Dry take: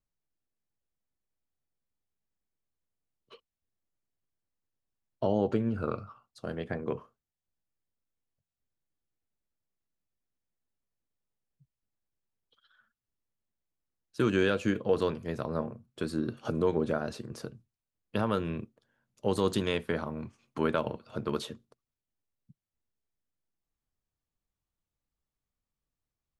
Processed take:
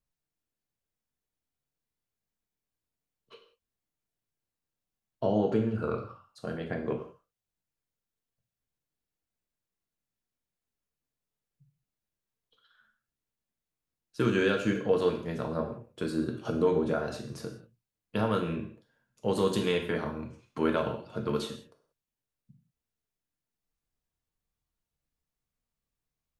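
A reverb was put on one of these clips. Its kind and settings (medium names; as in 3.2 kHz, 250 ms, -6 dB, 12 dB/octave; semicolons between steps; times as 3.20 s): gated-style reverb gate 210 ms falling, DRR 2 dB; trim -1 dB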